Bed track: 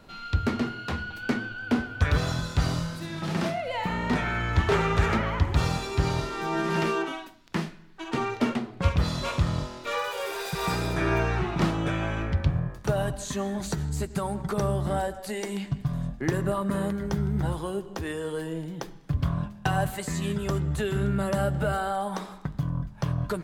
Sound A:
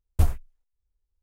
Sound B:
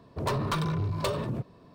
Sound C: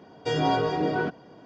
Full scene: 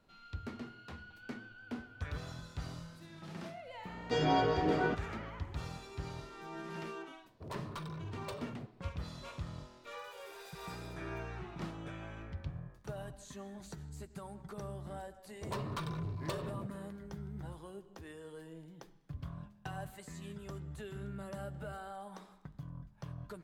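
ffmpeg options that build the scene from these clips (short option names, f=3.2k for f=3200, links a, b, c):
-filter_complex "[2:a]asplit=2[a][b];[0:a]volume=-17.5dB[c];[3:a]atrim=end=1.45,asetpts=PTS-STARTPTS,volume=-5.5dB,afade=t=in:d=0.004:c=hsin,afade=t=out:st=1.446:d=0.004:c=hsin,adelay=169785S[d];[a]atrim=end=1.74,asetpts=PTS-STARTPTS,volume=-14.5dB,afade=t=in:d=0.004:c=hsin,afade=t=out:st=1.736:d=0.004:c=hsin,adelay=7240[e];[b]atrim=end=1.74,asetpts=PTS-STARTPTS,volume=-10.5dB,afade=t=in:d=0.004:c=hsin,afade=t=out:st=1.736:d=0.004:c=hsin,adelay=15250[f];[c][d][e][f]amix=inputs=4:normalize=0"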